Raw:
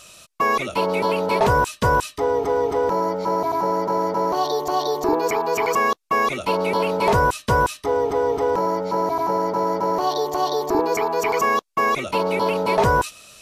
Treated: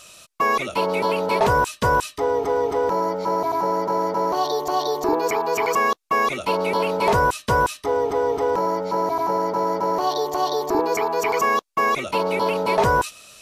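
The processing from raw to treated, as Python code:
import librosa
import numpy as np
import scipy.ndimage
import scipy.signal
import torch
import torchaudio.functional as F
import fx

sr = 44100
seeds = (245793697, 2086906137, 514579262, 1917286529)

y = fx.low_shelf(x, sr, hz=250.0, db=-3.5)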